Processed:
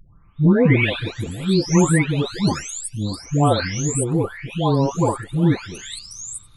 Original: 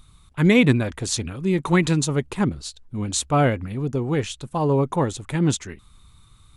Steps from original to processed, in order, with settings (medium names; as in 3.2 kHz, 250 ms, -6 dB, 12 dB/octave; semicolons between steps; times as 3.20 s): delay that grows with frequency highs late, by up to 820 ms; trim +4 dB